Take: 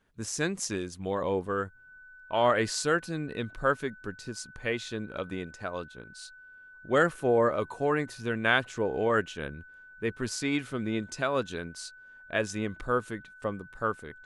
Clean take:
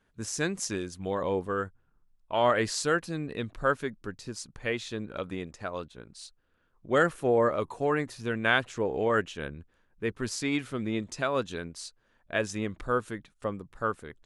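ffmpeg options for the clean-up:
-af "bandreject=f=1.5k:w=30"

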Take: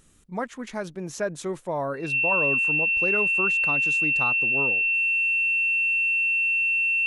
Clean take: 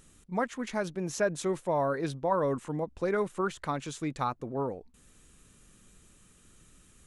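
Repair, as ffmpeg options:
-af "bandreject=f=2.7k:w=30"

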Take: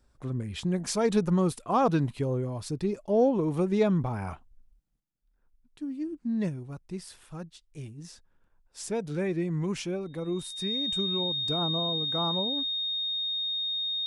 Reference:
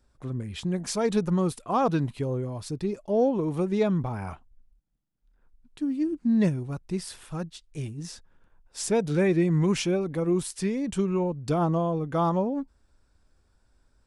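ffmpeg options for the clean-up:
-af "bandreject=f=3.7k:w=30,asetnsamples=n=441:p=0,asendcmd='5 volume volume 7dB',volume=0dB"

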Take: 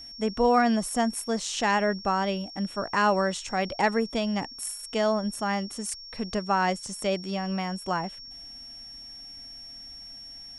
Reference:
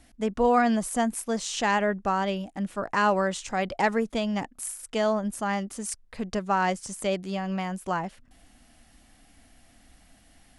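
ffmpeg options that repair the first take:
-af "bandreject=f=5.5k:w=30"

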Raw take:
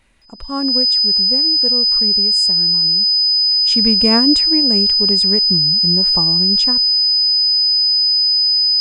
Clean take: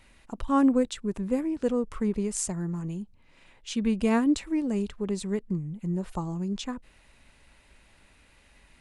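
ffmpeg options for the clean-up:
-af "bandreject=f=5k:w=30,asetnsamples=n=441:p=0,asendcmd='3.51 volume volume -8dB',volume=0dB"

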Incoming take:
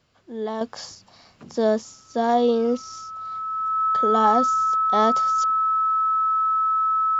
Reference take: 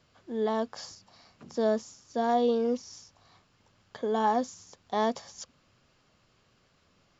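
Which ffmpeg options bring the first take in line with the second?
-af "bandreject=f=1.3k:w=30,asetnsamples=n=441:p=0,asendcmd='0.61 volume volume -6dB',volume=0dB"

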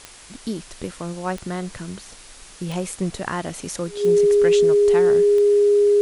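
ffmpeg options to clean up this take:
-af "adeclick=t=4,bandreject=f=410:w=30,afwtdn=0.0079"

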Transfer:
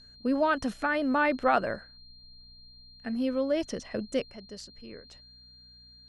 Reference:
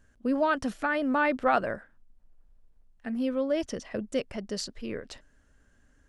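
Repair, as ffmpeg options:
-af "bandreject=f=61.2:t=h:w=4,bandreject=f=122.4:t=h:w=4,bandreject=f=183.6:t=h:w=4,bandreject=f=244.8:t=h:w=4,bandreject=f=4.2k:w=30,asetnsamples=n=441:p=0,asendcmd='4.3 volume volume 10dB',volume=0dB"

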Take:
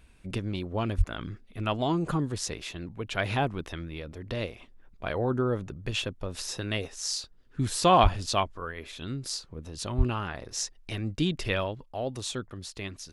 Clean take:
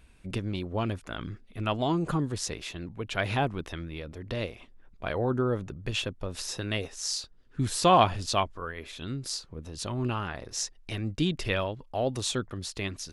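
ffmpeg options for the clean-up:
-filter_complex "[0:a]asplit=3[a][b][c];[a]afade=t=out:st=0.97:d=0.02[d];[b]highpass=f=140:w=0.5412,highpass=f=140:w=1.3066,afade=t=in:st=0.97:d=0.02,afade=t=out:st=1.09:d=0.02[e];[c]afade=t=in:st=1.09:d=0.02[f];[d][e][f]amix=inputs=3:normalize=0,asplit=3[g][h][i];[g]afade=t=out:st=8.02:d=0.02[j];[h]highpass=f=140:w=0.5412,highpass=f=140:w=1.3066,afade=t=in:st=8.02:d=0.02,afade=t=out:st=8.14:d=0.02[k];[i]afade=t=in:st=8.14:d=0.02[l];[j][k][l]amix=inputs=3:normalize=0,asplit=3[m][n][o];[m]afade=t=out:st=9.97:d=0.02[p];[n]highpass=f=140:w=0.5412,highpass=f=140:w=1.3066,afade=t=in:st=9.97:d=0.02,afade=t=out:st=10.09:d=0.02[q];[o]afade=t=in:st=10.09:d=0.02[r];[p][q][r]amix=inputs=3:normalize=0,asetnsamples=n=441:p=0,asendcmd='11.84 volume volume 4dB',volume=0dB"

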